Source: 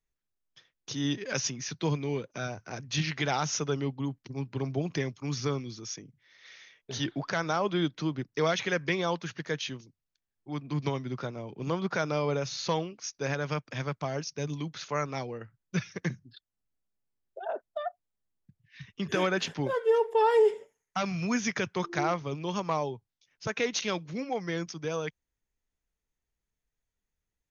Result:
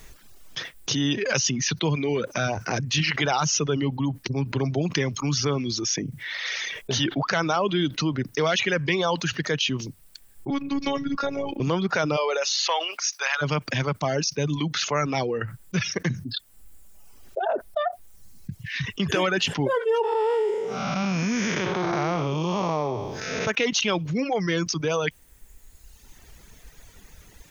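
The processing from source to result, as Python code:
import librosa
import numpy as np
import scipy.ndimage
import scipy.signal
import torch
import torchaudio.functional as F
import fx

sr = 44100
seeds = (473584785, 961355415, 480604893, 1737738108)

y = fx.robotise(x, sr, hz=279.0, at=(10.5, 11.6))
y = fx.highpass(y, sr, hz=fx.line((12.16, 410.0), (13.41, 970.0)), slope=24, at=(12.16, 13.41), fade=0.02)
y = fx.spec_blur(y, sr, span_ms=332.0, at=(20.02, 23.46), fade=0.02)
y = fx.dereverb_blind(y, sr, rt60_s=0.97)
y = fx.dynamic_eq(y, sr, hz=2900.0, q=5.3, threshold_db=-56.0, ratio=4.0, max_db=7)
y = fx.env_flatten(y, sr, amount_pct=70)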